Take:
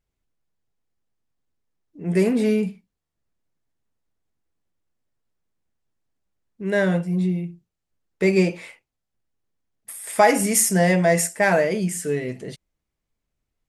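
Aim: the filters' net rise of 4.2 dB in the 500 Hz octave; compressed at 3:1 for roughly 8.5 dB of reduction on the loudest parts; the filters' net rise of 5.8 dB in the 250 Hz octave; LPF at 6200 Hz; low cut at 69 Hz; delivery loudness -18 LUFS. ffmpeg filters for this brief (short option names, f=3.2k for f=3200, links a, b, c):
-af "highpass=69,lowpass=6.2k,equalizer=f=250:t=o:g=8,equalizer=f=500:t=o:g=3,acompressor=threshold=-20dB:ratio=3,volume=5.5dB"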